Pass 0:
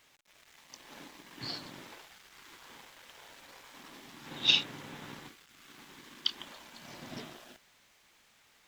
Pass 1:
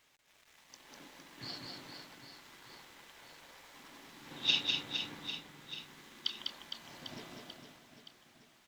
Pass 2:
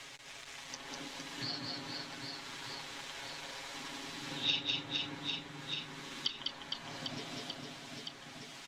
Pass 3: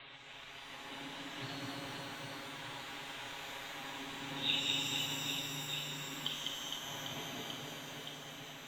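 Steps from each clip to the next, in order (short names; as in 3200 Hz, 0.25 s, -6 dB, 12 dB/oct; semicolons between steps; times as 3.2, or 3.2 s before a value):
reverse bouncing-ball echo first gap 0.2 s, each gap 1.3×, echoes 5; gain -5 dB
LPF 8000 Hz 12 dB/oct; comb 7.3 ms; three-band squash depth 70%; gain +3.5 dB
Chebyshev low-pass 3900 Hz, order 6; shimmer reverb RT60 2.8 s, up +12 st, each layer -8 dB, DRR -1 dB; gain -2.5 dB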